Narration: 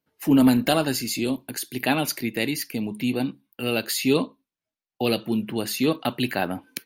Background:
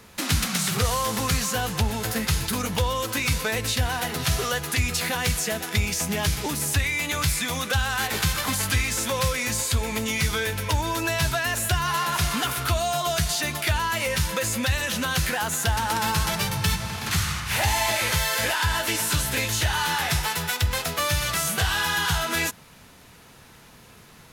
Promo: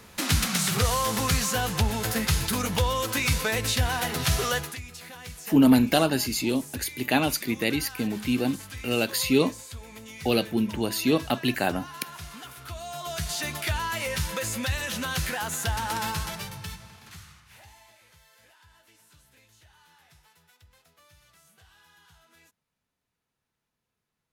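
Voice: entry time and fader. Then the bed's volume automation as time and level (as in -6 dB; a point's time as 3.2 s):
5.25 s, -0.5 dB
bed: 4.6 s -0.5 dB
4.81 s -17 dB
12.59 s -17 dB
13.4 s -4.5 dB
16.01 s -4.5 dB
18.01 s -34.5 dB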